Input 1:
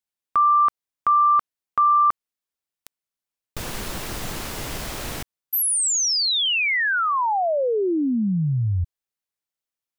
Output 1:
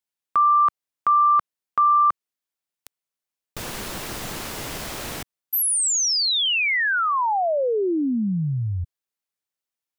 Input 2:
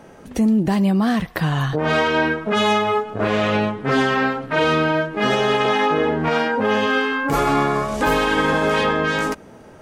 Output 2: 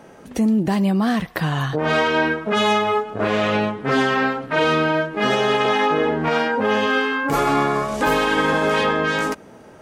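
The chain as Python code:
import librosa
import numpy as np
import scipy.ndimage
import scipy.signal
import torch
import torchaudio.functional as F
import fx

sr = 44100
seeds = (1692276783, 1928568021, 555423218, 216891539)

y = fx.low_shelf(x, sr, hz=84.0, db=-8.5)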